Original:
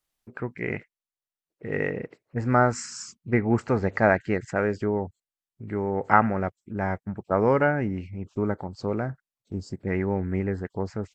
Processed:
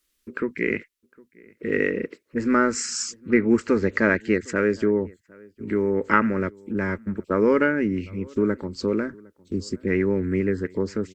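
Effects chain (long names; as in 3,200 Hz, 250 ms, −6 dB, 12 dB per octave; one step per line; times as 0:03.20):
in parallel at +0.5 dB: downward compressor, threshold −31 dBFS, peak gain reduction 18 dB
on the sum: harmonic generator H 2 −25 dB, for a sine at 0 dBFS
phaser with its sweep stopped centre 310 Hz, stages 4
slap from a distant wall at 130 metres, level −25 dB
level +4 dB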